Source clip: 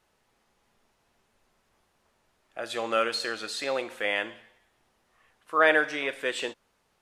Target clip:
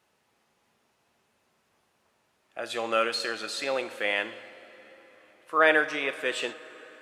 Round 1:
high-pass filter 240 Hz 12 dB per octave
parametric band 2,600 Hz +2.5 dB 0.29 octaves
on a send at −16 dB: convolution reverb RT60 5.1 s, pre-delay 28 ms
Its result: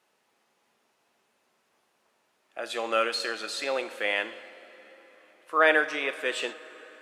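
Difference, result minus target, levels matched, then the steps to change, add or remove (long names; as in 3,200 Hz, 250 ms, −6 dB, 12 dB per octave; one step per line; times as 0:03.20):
125 Hz band −8.0 dB
change: high-pass filter 100 Hz 12 dB per octave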